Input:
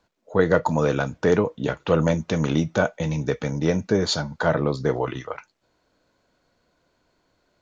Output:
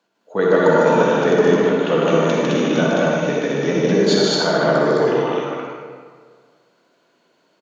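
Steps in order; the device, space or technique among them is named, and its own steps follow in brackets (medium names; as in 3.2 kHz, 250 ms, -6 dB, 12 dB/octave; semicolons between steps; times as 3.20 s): stadium PA (high-pass 180 Hz 24 dB/octave; peaking EQ 2.9 kHz +4.5 dB 0.38 oct; loudspeakers at several distances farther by 52 m -2 dB, 73 m -1 dB; reverberation RT60 1.8 s, pre-delay 44 ms, DRR -2 dB); trim -1 dB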